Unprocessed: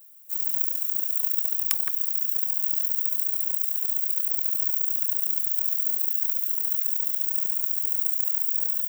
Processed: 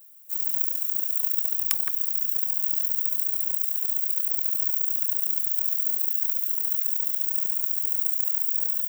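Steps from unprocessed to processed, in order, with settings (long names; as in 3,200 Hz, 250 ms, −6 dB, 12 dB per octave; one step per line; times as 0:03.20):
0:01.34–0:03.63: low-shelf EQ 220 Hz +9.5 dB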